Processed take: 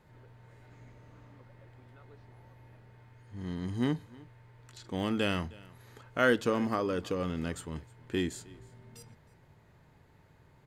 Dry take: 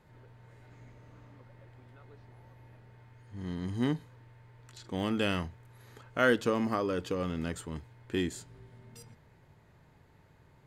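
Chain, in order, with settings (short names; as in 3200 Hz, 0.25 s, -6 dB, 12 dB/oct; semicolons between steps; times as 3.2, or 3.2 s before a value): echo 0.312 s -23 dB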